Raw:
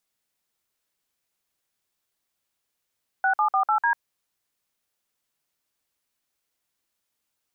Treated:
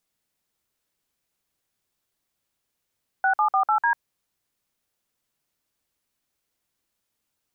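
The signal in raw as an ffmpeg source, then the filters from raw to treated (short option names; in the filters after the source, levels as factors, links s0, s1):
-f lavfi -i "aevalsrc='0.0891*clip(min(mod(t,0.149),0.096-mod(t,0.149))/0.002,0,1)*(eq(floor(t/0.149),0)*(sin(2*PI*770*mod(t,0.149))+sin(2*PI*1477*mod(t,0.149)))+eq(floor(t/0.149),1)*(sin(2*PI*852*mod(t,0.149))+sin(2*PI*1209*mod(t,0.149)))+eq(floor(t/0.149),2)*(sin(2*PI*770*mod(t,0.149))+sin(2*PI*1209*mod(t,0.149)))+eq(floor(t/0.149),3)*(sin(2*PI*852*mod(t,0.149))+sin(2*PI*1336*mod(t,0.149)))+eq(floor(t/0.149),4)*(sin(2*PI*941*mod(t,0.149))+sin(2*PI*1633*mod(t,0.149))))':d=0.745:s=44100"
-af "lowshelf=f=410:g=6"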